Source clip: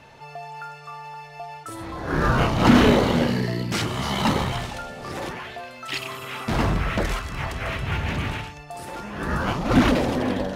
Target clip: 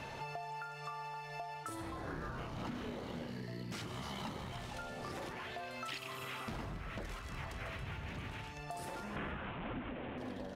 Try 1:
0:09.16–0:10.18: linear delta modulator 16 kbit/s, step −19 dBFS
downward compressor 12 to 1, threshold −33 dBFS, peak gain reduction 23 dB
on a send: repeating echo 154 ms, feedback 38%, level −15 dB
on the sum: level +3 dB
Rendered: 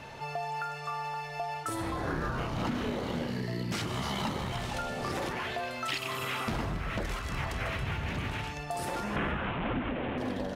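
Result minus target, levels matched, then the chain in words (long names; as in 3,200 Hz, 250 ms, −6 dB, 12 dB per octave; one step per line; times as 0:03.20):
downward compressor: peak gain reduction −10 dB
0:09.16–0:10.18: linear delta modulator 16 kbit/s, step −19 dBFS
downward compressor 12 to 1, threshold −44 dBFS, peak gain reduction 33 dB
on a send: repeating echo 154 ms, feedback 38%, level −15 dB
on the sum: level +3 dB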